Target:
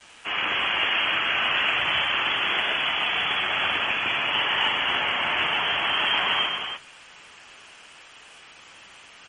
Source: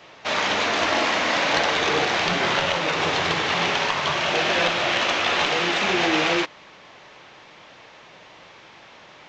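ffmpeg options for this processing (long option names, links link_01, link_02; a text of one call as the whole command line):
ffmpeg -i in.wav -filter_complex "[0:a]asettb=1/sr,asplit=3[link_01][link_02][link_03];[link_01]atrim=end=1.484[link_04];[link_02]atrim=start=1.48:end=4.01,asetpts=PTS-STARTPTS,afade=type=in:duration=0.004:curve=qsin,afade=type=out:start_time=2.526:duration=0.004:curve=qsin,acompressor=mode=upward:threshold=-39dB:ratio=2.5[link_05];[link_03]atrim=start=4.006[link_06];[link_04][link_05]acrossfade=duration=0.004:curve1=hsin:curve2=qsin[link_07];[link_07][link_06]acrossfade=duration=0.004:curve1=qsin:curve2=hsin,lowpass=frequency=3000:width_type=q:width=0.5098,lowpass=frequency=3000:width_type=q:width=0.6013,lowpass=frequency=3000:width_type=q:width=0.9,lowpass=frequency=3000:width_type=q:width=2.563,afreqshift=-3500,flanger=delay=8.5:depth=7.7:regen=-44:speed=0.24:shape=triangular,adynamicequalizer=threshold=0.00178:dfrequency=500:dqfactor=5.2:tfrequency=500:tqfactor=5.2:attack=5:release=100:ratio=0.375:range=2.5:mode=cutabove:tftype=bell,acontrast=85,highpass=frequency=62:width=0.5412,highpass=frequency=62:width=1.3066,aecho=1:1:46|124|201|214|314:0.355|0.473|0.2|0.211|0.447,acrusher=bits=6:mix=0:aa=0.000001,volume=-6.5dB" -ar 44100 -c:a libmp3lame -b:a 40k out.mp3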